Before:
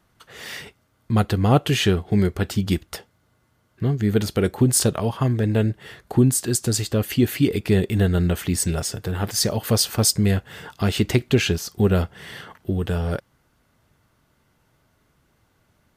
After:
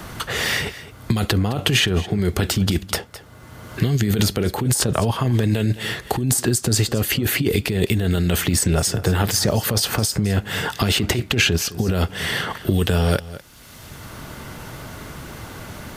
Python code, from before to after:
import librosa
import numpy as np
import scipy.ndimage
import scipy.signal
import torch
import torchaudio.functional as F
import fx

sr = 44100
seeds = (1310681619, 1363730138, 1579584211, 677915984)

p1 = fx.over_compress(x, sr, threshold_db=-23.0, ratio=-1.0)
p2 = p1 + fx.echo_single(p1, sr, ms=210, db=-19.0, dry=0)
p3 = fx.band_squash(p2, sr, depth_pct=70)
y = p3 * 10.0 ** (4.5 / 20.0)